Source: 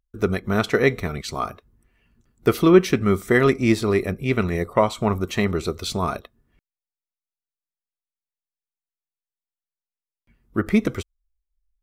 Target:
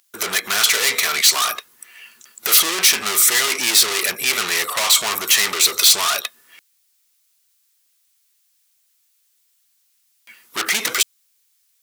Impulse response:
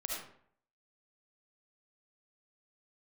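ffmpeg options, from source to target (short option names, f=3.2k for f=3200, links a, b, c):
-filter_complex "[0:a]asplit=2[a][b];[b]highpass=f=720:p=1,volume=36dB,asoftclip=type=tanh:threshold=-2.5dB[c];[a][c]amix=inputs=2:normalize=0,lowpass=f=5k:p=1,volume=-6dB,acontrast=78,aderivative"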